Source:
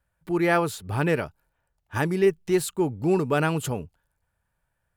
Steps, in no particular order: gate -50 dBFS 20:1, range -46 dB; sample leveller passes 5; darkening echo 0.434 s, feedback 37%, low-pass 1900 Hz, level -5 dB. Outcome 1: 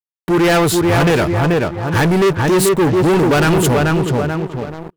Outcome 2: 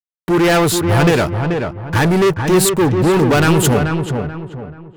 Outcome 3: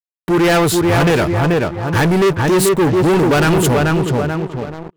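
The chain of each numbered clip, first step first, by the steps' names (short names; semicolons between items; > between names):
darkening echo > gate > sample leveller; gate > sample leveller > darkening echo; gate > darkening echo > sample leveller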